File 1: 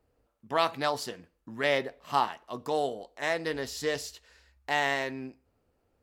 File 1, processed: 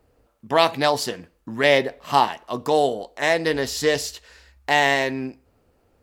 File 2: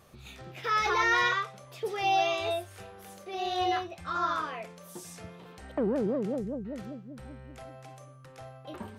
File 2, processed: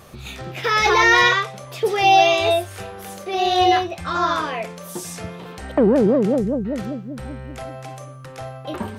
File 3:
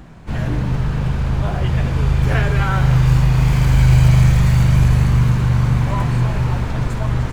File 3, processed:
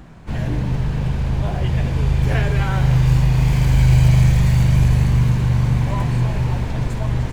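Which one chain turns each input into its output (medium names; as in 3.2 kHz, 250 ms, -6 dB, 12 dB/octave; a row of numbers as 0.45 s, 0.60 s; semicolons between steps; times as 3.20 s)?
dynamic bell 1.3 kHz, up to -7 dB, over -44 dBFS, Q 2.9; peak normalisation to -3 dBFS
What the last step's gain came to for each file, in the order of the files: +10.5 dB, +13.0 dB, -1.5 dB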